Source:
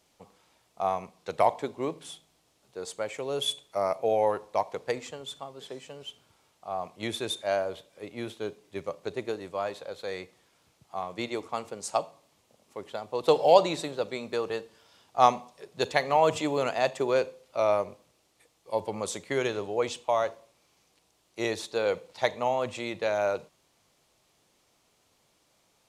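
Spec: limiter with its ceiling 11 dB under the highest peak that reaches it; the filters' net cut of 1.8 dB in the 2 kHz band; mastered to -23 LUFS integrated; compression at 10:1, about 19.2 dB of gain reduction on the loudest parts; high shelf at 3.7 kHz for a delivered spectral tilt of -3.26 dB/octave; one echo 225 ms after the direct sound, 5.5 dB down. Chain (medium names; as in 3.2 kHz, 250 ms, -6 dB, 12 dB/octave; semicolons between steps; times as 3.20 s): peaking EQ 2 kHz -3.5 dB; treble shelf 3.7 kHz +4.5 dB; compression 10:1, threshold -33 dBFS; peak limiter -30 dBFS; delay 225 ms -5.5 dB; trim +18.5 dB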